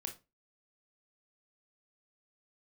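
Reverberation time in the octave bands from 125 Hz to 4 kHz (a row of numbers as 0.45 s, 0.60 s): 0.30 s, 0.35 s, 0.30 s, 0.25 s, 0.20 s, 0.20 s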